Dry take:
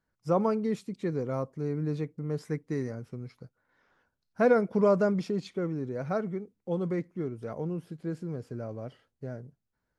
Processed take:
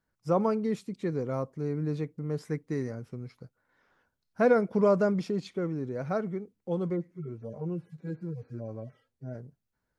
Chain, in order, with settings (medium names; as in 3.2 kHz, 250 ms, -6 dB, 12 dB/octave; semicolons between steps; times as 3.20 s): 6.90–9.35 s: harmonic-percussive separation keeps harmonic